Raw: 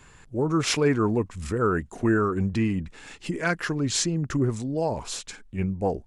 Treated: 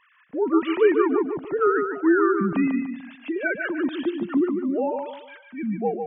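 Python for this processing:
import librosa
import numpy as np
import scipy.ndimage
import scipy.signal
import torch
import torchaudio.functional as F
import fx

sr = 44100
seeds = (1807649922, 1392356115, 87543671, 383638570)

p1 = fx.sine_speech(x, sr)
p2 = p1 + fx.echo_feedback(p1, sr, ms=147, feedback_pct=33, wet_db=-6.0, dry=0)
y = p2 * librosa.db_to_amplitude(1.5)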